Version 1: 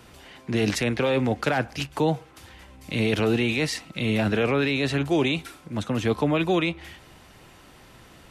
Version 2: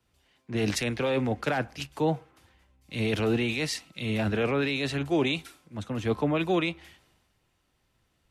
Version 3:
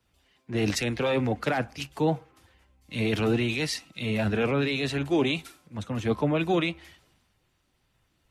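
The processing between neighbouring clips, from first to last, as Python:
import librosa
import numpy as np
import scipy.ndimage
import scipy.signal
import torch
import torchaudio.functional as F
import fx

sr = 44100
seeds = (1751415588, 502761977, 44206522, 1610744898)

y1 = fx.band_widen(x, sr, depth_pct=70)
y1 = F.gain(torch.from_numpy(y1), -4.0).numpy()
y2 = fx.spec_quant(y1, sr, step_db=15)
y2 = F.gain(torch.from_numpy(y2), 1.5).numpy()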